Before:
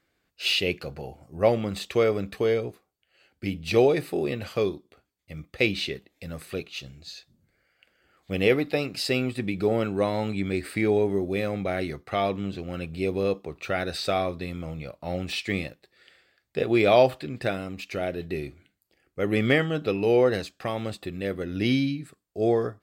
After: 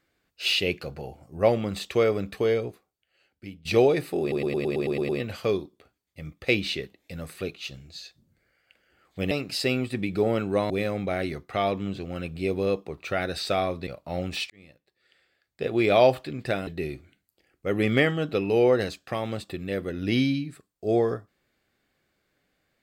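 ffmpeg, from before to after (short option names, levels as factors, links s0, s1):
-filter_complex "[0:a]asplit=15[s0][s1][s2][s3][s4][s5][s6][s7][s8][s9][s10][s11][s12][s13][s14];[s0]atrim=end=3.65,asetpts=PTS-STARTPTS,afade=t=out:st=2.64:d=1.01:silence=0.149624[s15];[s1]atrim=start=3.65:end=4.322,asetpts=PTS-STARTPTS,afade=t=in:d=0.004:c=hsin:silence=0.149624[s16];[s2]atrim=start=4.208:end=4.322[s17];[s3]atrim=start=4.208:end=4.322[s18];[s4]atrim=start=4.208:end=4.322[s19];[s5]atrim=start=4.208:end=4.322[s20];[s6]atrim=start=4.208:end=4.322[s21];[s7]atrim=start=4.208:end=4.322[s22];[s8]atrim=start=4.208:end=4.322[s23];[s9]atrim=start=4.208:end=8.432[s24];[s10]atrim=start=8.758:end=10.152[s25];[s11]atrim=start=11.278:end=14.452[s26];[s12]atrim=start=14.828:end=15.46,asetpts=PTS-STARTPTS,afade=t=out:st=0.628:d=0.004:c=hsin[s27];[s13]atrim=start=15.46:end=17.632,asetpts=PTS-STARTPTS,afade=t=in:d=1.59[s28];[s14]atrim=start=18.198[s29];[s15][s16]concat=n=2:v=0:a=1[s30];[s30][s17]acrossfade=d=0.004:c1=hsin:c2=hsin[s31];[s31][s18]acrossfade=d=0.004:c1=hsin:c2=hsin[s32];[s32][s19]acrossfade=d=0.004:c1=hsin:c2=hsin[s33];[s33][s20]acrossfade=d=0.004:c1=hsin:c2=hsin[s34];[s34][s21]acrossfade=d=0.004:c1=hsin:c2=hsin[s35];[s35][s22]acrossfade=d=0.004:c1=hsin:c2=hsin[s36];[s36][s23]acrossfade=d=0.004:c1=hsin:c2=hsin[s37];[s37][s24]acrossfade=d=0.004:c1=hsin:c2=hsin[s38];[s38][s25]acrossfade=d=0.004:c1=hsin:c2=hsin[s39];[s39][s26]acrossfade=d=0.004:c1=hsin:c2=hsin[s40];[s27][s28]concat=n=2:v=0:a=1[s41];[s40][s41]acrossfade=d=0.004:c1=hsin:c2=hsin[s42];[s42][s29]acrossfade=d=0.004:c1=hsin:c2=hsin"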